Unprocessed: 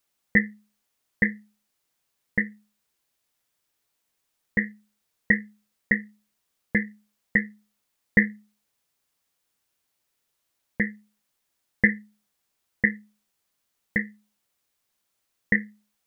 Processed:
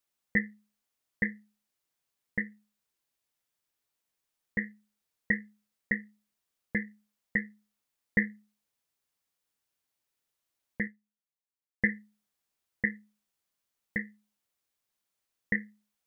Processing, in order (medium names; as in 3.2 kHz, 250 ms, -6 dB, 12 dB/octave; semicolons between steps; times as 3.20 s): 10.87–11.84 s: upward expansion 1.5:1, over -56 dBFS; trim -7.5 dB